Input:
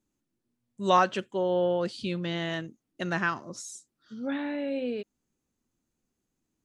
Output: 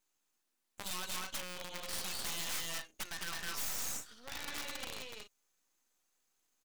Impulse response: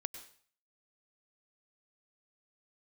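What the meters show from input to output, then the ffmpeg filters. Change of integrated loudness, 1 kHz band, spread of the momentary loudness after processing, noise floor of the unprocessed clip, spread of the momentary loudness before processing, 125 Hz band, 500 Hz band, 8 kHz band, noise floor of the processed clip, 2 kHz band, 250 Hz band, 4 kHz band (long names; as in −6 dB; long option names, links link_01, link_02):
−10.5 dB, −17.5 dB, 9 LU, −83 dBFS, 18 LU, −18.5 dB, −22.5 dB, +6.0 dB, −83 dBFS, −9.0 dB, −22.0 dB, −1.0 dB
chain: -filter_complex "[0:a]asplit=2[link_01][link_02];[link_02]aecho=0:1:207|244.9:0.794|0.316[link_03];[link_01][link_03]amix=inputs=2:normalize=0,alimiter=limit=-20dB:level=0:latency=1:release=125,acrossover=split=2900[link_04][link_05];[link_04]acompressor=threshold=-43dB:ratio=5[link_06];[link_05]aecho=1:1:3.9:0.8[link_07];[link_06][link_07]amix=inputs=2:normalize=0,aeval=exprs='(mod(59.6*val(0)+1,2)-1)/59.6':channel_layout=same,highpass=840,aeval=exprs='max(val(0),0)':channel_layout=same,volume=7.5dB"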